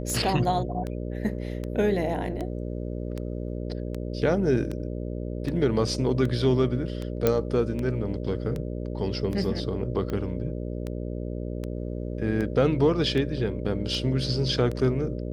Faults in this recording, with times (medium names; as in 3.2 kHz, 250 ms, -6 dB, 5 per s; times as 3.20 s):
buzz 60 Hz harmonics 10 -32 dBFS
tick 78 rpm -20 dBFS
7.27 s: pop -8 dBFS